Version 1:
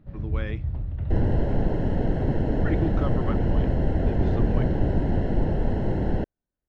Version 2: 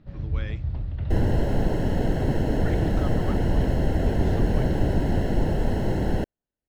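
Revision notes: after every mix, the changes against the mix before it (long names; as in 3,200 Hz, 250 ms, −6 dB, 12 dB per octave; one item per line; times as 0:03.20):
speech −7.0 dB
master: remove head-to-tape spacing loss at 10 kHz 23 dB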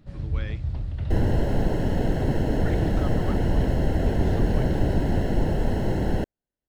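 first sound: remove high-frequency loss of the air 160 metres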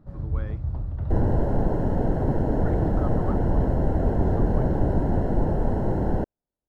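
master: add high shelf with overshoot 1,700 Hz −13 dB, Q 1.5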